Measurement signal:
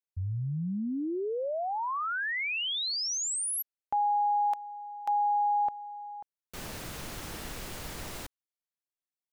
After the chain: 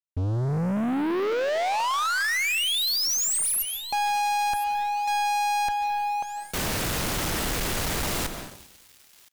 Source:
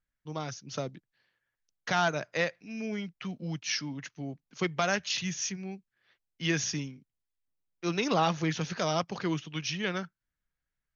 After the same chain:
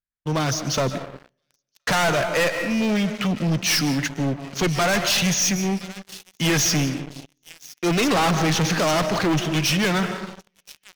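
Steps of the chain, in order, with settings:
asymmetric clip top −34 dBFS, bottom −16 dBFS
on a send: delay with a high-pass on its return 1,020 ms, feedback 43%, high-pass 2,600 Hz, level −20 dB
on the sum: comb and all-pass reverb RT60 1.1 s, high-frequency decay 0.35×, pre-delay 110 ms, DRR 12.5 dB
leveller curve on the samples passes 5

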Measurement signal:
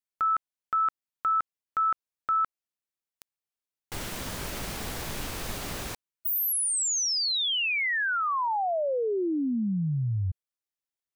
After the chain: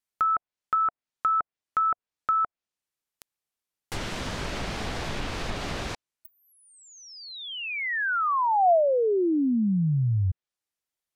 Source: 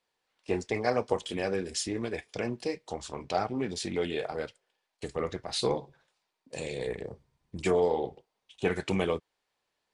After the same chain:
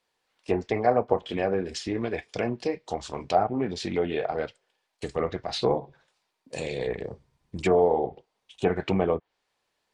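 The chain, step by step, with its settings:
dynamic equaliser 700 Hz, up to +6 dB, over −46 dBFS, Q 4.3
treble cut that deepens with the level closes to 1,300 Hz, closed at −24.5 dBFS
level +4 dB

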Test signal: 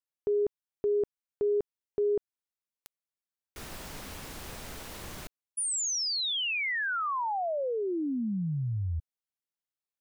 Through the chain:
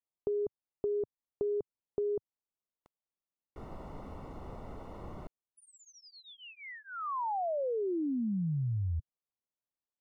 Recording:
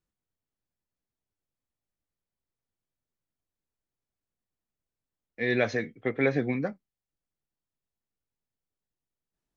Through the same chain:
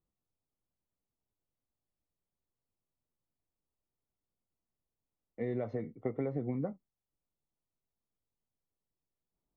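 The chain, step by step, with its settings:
dynamic equaliser 120 Hz, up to +4 dB, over −44 dBFS, Q 1.1
downward compressor 10 to 1, threshold −30 dBFS
Savitzky-Golay smoothing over 65 samples

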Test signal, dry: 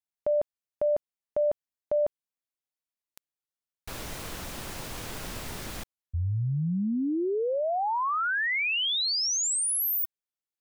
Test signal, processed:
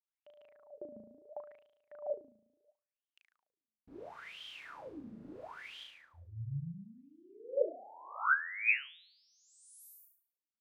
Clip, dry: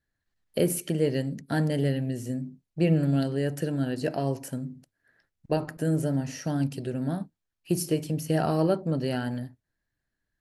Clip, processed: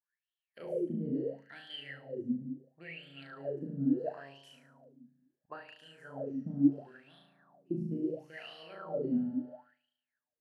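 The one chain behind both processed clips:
low-shelf EQ 200 Hz +8 dB
flutter between parallel walls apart 6.2 metres, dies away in 0.96 s
LFO wah 0.73 Hz 210–3,200 Hz, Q 12
level +2 dB

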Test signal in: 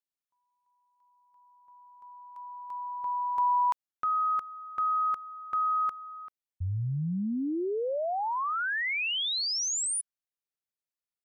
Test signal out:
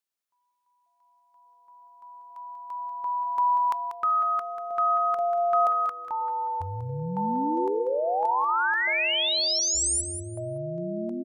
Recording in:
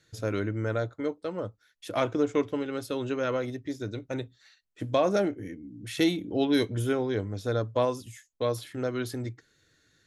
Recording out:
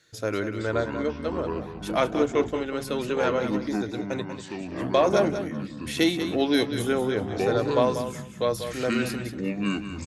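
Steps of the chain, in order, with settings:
low-shelf EQ 190 Hz −11 dB
delay with pitch and tempo change per echo 404 ms, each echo −6 semitones, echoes 3, each echo −6 dB
on a send: repeating echo 190 ms, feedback 18%, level −9.5 dB
on the sum: level +4.5 dB

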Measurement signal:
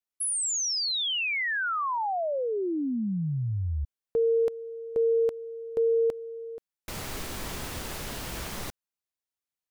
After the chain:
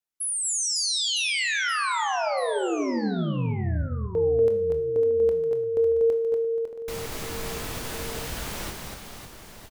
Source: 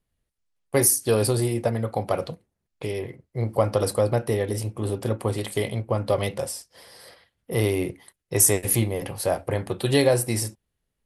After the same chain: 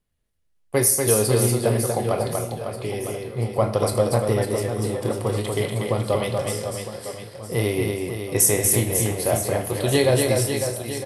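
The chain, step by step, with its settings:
double-tracking delay 24 ms −12 dB
on a send: reverse bouncing-ball delay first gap 240 ms, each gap 1.3×, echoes 5
on the sum: four-comb reverb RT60 0.65 s, combs from 26 ms, DRR 9.5 dB

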